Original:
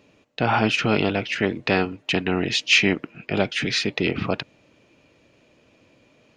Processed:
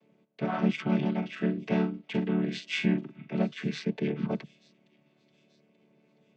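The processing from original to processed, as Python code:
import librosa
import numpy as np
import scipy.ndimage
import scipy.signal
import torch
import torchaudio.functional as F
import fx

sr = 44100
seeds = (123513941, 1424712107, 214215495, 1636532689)

y = fx.chord_vocoder(x, sr, chord='major triad', root=50)
y = fx.doubler(y, sr, ms=44.0, db=-7.5, at=(1.21, 3.28), fade=0.02)
y = fx.echo_wet_highpass(y, sr, ms=883, feedback_pct=43, hz=3600.0, wet_db=-20.5)
y = y * librosa.db_to_amplitude(-6.0)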